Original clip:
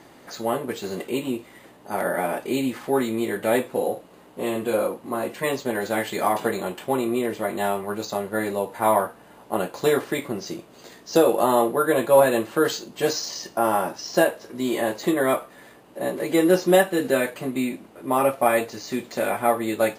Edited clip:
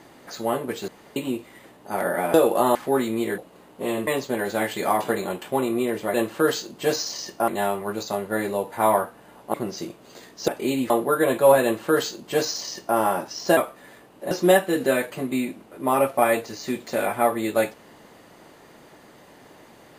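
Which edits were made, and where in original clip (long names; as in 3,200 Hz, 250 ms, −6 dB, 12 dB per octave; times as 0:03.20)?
0:00.88–0:01.16: fill with room tone
0:02.34–0:02.76: swap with 0:11.17–0:11.58
0:03.39–0:03.96: remove
0:04.65–0:05.43: remove
0:09.56–0:10.23: remove
0:12.31–0:13.65: duplicate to 0:07.50
0:14.25–0:15.31: remove
0:16.05–0:16.55: remove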